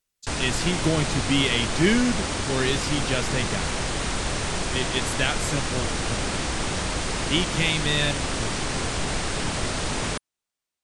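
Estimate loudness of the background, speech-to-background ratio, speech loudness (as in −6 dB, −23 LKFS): −27.0 LKFS, 1.0 dB, −26.0 LKFS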